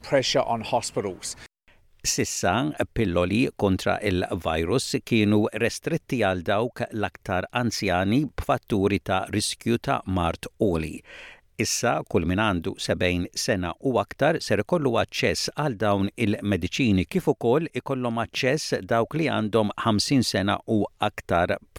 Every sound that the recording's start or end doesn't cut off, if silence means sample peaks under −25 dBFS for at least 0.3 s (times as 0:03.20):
0:02.05–0:10.89